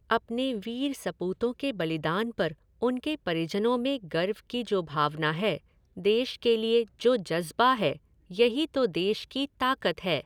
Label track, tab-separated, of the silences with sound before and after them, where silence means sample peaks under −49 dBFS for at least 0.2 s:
2.540000	2.810000	silence
5.580000	5.960000	silence
7.980000	8.300000	silence